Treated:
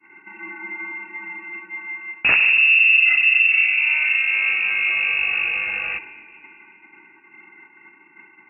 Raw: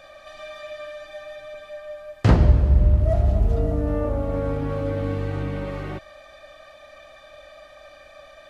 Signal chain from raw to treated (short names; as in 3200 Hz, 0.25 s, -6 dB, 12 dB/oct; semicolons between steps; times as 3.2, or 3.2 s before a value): expander -39 dBFS; added harmonics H 3 -9 dB, 5 -7 dB, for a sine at -4 dBFS; on a send at -15.5 dB: reverb RT60 2.2 s, pre-delay 4 ms; on the sum: inverted band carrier 2700 Hz; gain -2.5 dB